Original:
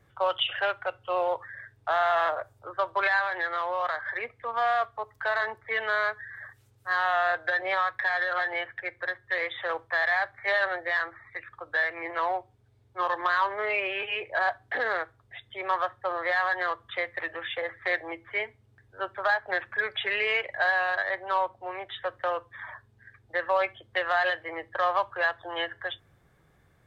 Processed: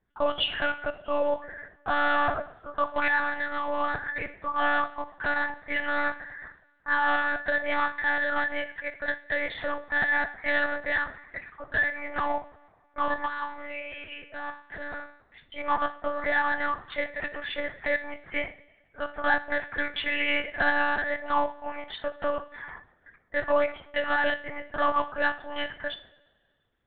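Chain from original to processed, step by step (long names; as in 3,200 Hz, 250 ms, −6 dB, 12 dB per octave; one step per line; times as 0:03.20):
noise gate −52 dBFS, range −15 dB
0:13.26–0:15.42: tuned comb filter 87 Hz, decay 0.55 s, harmonics all, mix 80%
coupled-rooms reverb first 0.47 s, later 1.8 s, from −18 dB, DRR 8 dB
one-pitch LPC vocoder at 8 kHz 290 Hz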